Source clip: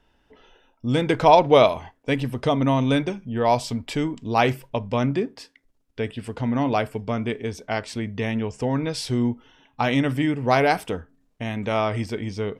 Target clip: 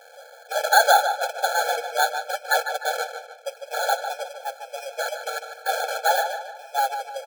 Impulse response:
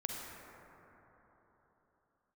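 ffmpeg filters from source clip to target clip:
-filter_complex "[0:a]aeval=exprs='val(0)+0.5*0.141*sgn(val(0))':c=same,agate=range=-21dB:threshold=-17dB:ratio=16:detection=peak,highshelf=f=5.8k:g=-7,acrossover=split=530[a][b];[a]aeval=exprs='(mod(14.1*val(0)+1,2)-1)/14.1':c=same[c];[c][b]amix=inputs=2:normalize=0,asetrate=32097,aresample=44100,atempo=1.37395,asuperstop=centerf=3200:order=20:qfactor=6.7,acrusher=samples=28:mix=1:aa=0.000001,asplit=2[d][e];[e]adelay=261,lowpass=f=3.3k:p=1,volume=-8dB,asplit=2[f][g];[g]adelay=261,lowpass=f=3.3k:p=1,volume=0.43,asplit=2[h][i];[i]adelay=261,lowpass=f=3.3k:p=1,volume=0.43,asplit=2[j][k];[k]adelay=261,lowpass=f=3.3k:p=1,volume=0.43,asplit=2[l][m];[m]adelay=261,lowpass=f=3.3k:p=1,volume=0.43[n];[d][f][h][j][l][n]amix=inputs=6:normalize=0,asetrate=76440,aresample=44100,afftfilt=real='re*eq(mod(floor(b*sr/1024/440),2),1)':imag='im*eq(mod(floor(b*sr/1024/440),2),1)':win_size=1024:overlap=0.75,volume=3.5dB"

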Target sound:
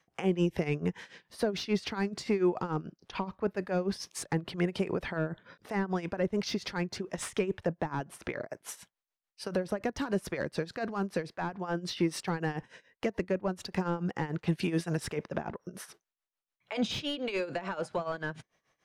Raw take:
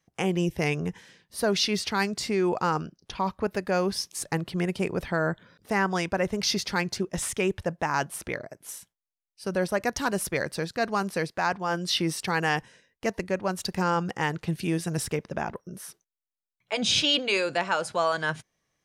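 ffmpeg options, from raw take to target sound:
-filter_complex "[0:a]tremolo=f=6.9:d=0.84,asplit=2[a][b];[b]asoftclip=type=tanh:threshold=-24.5dB,volume=-3.5dB[c];[a][c]amix=inputs=2:normalize=0,asplit=2[d][e];[e]highpass=f=720:p=1,volume=11dB,asoftclip=type=tanh:threshold=-11dB[f];[d][f]amix=inputs=2:normalize=0,lowpass=f=1.9k:p=1,volume=-6dB,acrossover=split=410[g][h];[h]acompressor=threshold=-35dB:ratio=10[i];[g][i]amix=inputs=2:normalize=0"

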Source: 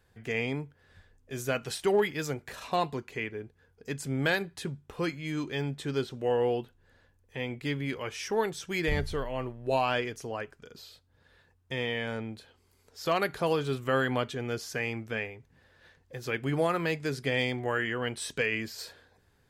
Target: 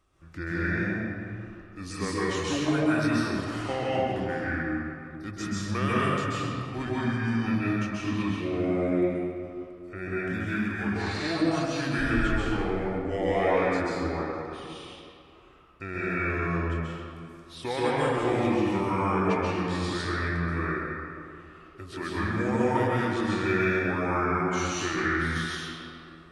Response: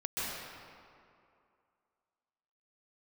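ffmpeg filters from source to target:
-filter_complex "[0:a]asplit=2[a][b];[b]alimiter=level_in=3dB:limit=-24dB:level=0:latency=1,volume=-3dB,volume=-3dB[c];[a][c]amix=inputs=2:normalize=0[d];[1:a]atrim=start_sample=2205,asetrate=57330,aresample=44100[e];[d][e]afir=irnorm=-1:irlink=0,asetrate=32667,aresample=44100,volume=-1.5dB"

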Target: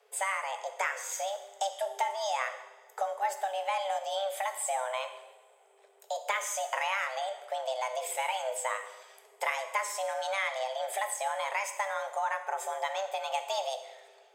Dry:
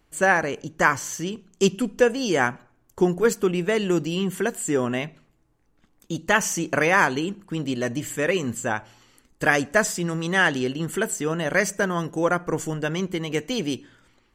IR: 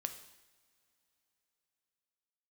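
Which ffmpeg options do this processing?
-filter_complex "[0:a]afreqshift=390,acompressor=threshold=-29dB:ratio=4[a];[1:a]atrim=start_sample=2205,asetrate=41454,aresample=44100[b];[a][b]afir=irnorm=-1:irlink=0"

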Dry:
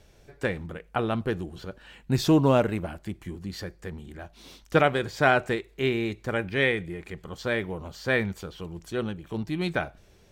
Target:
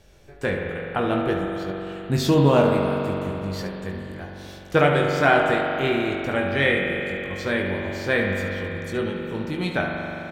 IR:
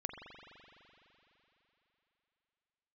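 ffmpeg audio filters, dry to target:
-filter_complex "[0:a]aecho=1:1:21|72:0.501|0.299[a];[1:a]atrim=start_sample=2205[b];[a][b]afir=irnorm=-1:irlink=0,volume=4dB"

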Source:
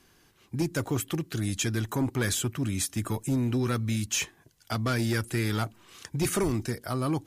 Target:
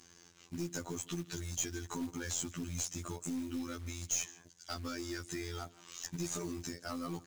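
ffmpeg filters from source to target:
-filter_complex "[0:a]highpass=f=47:p=1,acompressor=threshold=-33dB:ratio=16,lowpass=f=6.6k:t=q:w=3.6,afftfilt=real='hypot(re,im)*cos(PI*b)':imag='0':win_size=2048:overlap=0.75,asplit=2[a][b];[b]adelay=157.4,volume=-24dB,highshelf=f=4k:g=-3.54[c];[a][c]amix=inputs=2:normalize=0,aeval=exprs='(tanh(28.2*val(0)+0.2)-tanh(0.2))/28.2':c=same,acrusher=bits=4:mode=log:mix=0:aa=0.000001,volume=2.5dB"

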